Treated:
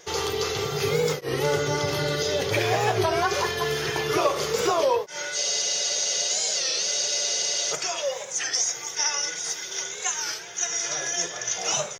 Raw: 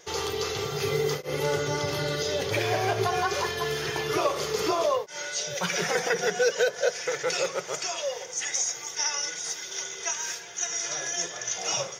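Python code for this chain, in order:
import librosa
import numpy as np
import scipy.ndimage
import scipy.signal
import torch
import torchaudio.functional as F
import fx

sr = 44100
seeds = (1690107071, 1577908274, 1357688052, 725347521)

y = fx.spec_freeze(x, sr, seeds[0], at_s=5.39, hold_s=2.33)
y = fx.record_warp(y, sr, rpm=33.33, depth_cents=160.0)
y = y * 10.0 ** (3.0 / 20.0)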